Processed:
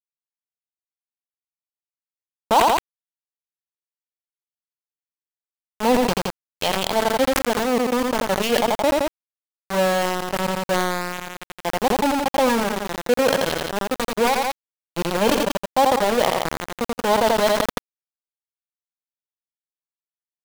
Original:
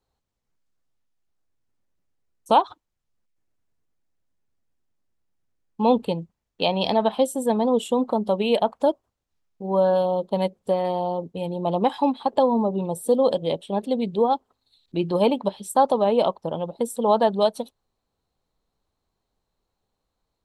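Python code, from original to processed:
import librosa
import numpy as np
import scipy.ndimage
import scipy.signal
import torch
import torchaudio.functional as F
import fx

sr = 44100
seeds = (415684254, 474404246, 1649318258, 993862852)

p1 = np.where(np.abs(x) >= 10.0 ** (-19.0 / 20.0), x, 0.0)
p2 = p1 + fx.echo_feedback(p1, sr, ms=85, feedback_pct=25, wet_db=-17, dry=0)
y = fx.sustainer(p2, sr, db_per_s=27.0)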